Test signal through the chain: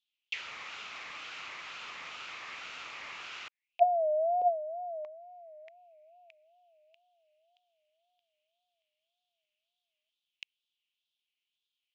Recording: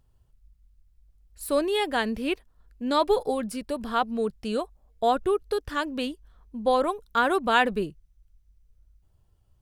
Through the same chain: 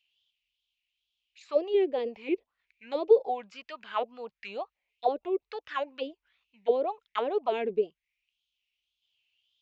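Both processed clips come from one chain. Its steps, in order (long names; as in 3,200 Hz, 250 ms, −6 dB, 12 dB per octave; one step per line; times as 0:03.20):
high shelf with overshoot 1,900 Hz +8.5 dB, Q 3
envelope filter 410–3,200 Hz, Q 5.4, down, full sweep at −18.5 dBFS
tape wow and flutter 140 cents
downsampling to 16,000 Hz
level +5.5 dB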